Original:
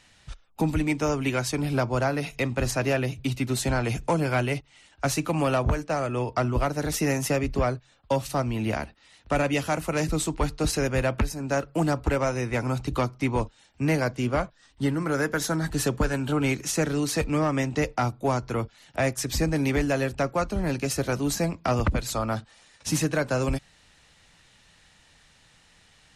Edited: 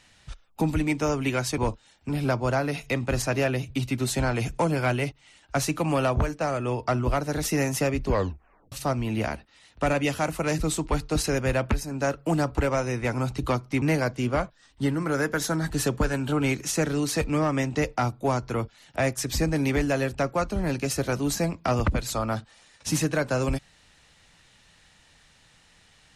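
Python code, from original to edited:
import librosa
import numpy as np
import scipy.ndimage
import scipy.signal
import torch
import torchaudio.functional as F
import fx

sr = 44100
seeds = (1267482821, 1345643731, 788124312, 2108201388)

y = fx.edit(x, sr, fx.tape_stop(start_s=7.56, length_s=0.65),
    fx.move(start_s=13.31, length_s=0.51, to_s=1.58), tone=tone)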